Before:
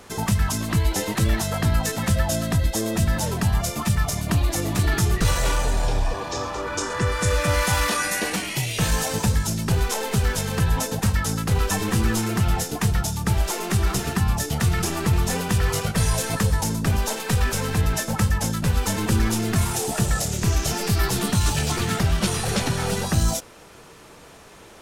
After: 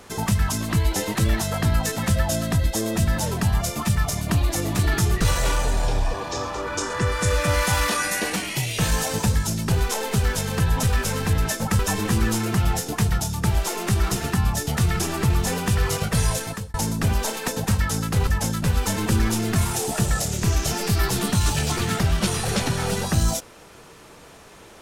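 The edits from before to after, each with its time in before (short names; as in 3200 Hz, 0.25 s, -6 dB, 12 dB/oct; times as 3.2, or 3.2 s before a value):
10.83–11.62 swap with 17.31–18.27
16.12–16.57 fade out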